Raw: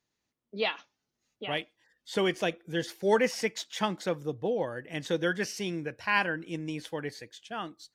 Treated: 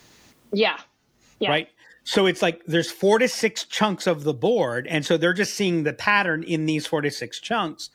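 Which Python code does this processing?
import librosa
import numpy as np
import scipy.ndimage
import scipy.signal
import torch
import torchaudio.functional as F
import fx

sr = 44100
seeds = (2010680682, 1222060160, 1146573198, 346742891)

y = fx.band_squash(x, sr, depth_pct=70)
y = y * 10.0 ** (9.0 / 20.0)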